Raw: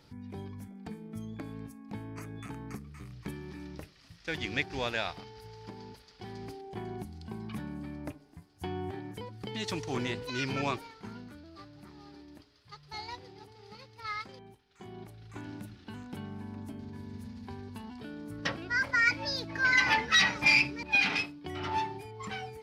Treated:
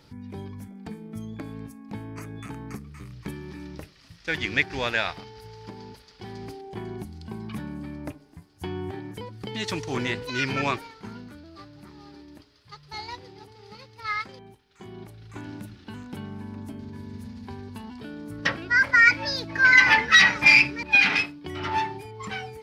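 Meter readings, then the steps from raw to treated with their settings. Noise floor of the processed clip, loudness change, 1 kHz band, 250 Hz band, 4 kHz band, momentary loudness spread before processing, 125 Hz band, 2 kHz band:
−55 dBFS, +10.5 dB, +6.0 dB, +4.5 dB, +5.5 dB, 22 LU, +4.5 dB, +9.5 dB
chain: notch filter 730 Hz, Q 23
dynamic equaliser 1,800 Hz, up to +6 dB, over −43 dBFS, Q 1.3
level +4.5 dB

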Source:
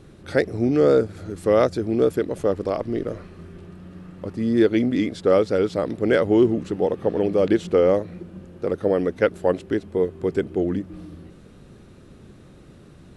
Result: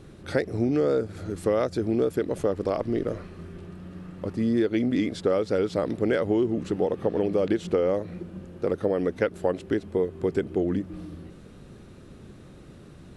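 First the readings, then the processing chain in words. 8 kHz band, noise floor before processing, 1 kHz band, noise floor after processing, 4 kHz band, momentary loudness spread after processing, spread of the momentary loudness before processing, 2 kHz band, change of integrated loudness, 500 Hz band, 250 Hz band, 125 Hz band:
can't be measured, −47 dBFS, −5.0 dB, −47 dBFS, −4.0 dB, 16 LU, 13 LU, −5.0 dB, −4.5 dB, −5.0 dB, −4.0 dB, −3.0 dB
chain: downward compressor, threshold −20 dBFS, peak gain reduction 8.5 dB

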